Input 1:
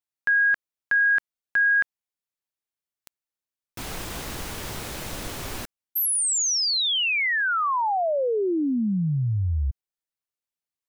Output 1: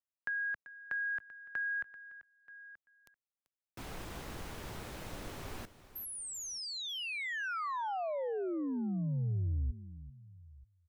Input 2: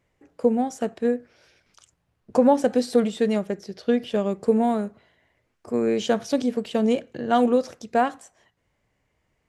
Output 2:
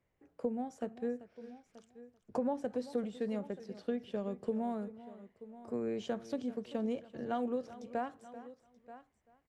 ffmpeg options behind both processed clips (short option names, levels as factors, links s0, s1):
-filter_complex "[0:a]asplit=2[s0][s1];[s1]aecho=0:1:930:0.0794[s2];[s0][s2]amix=inputs=2:normalize=0,acrossover=split=130[s3][s4];[s4]acompressor=threshold=0.0447:ratio=2:attack=14:release=875:knee=2.83:detection=peak[s5];[s3][s5]amix=inputs=2:normalize=0,highshelf=f=3000:g=-8,asplit=2[s6][s7];[s7]aecho=0:1:388:0.158[s8];[s6][s8]amix=inputs=2:normalize=0,volume=0.355"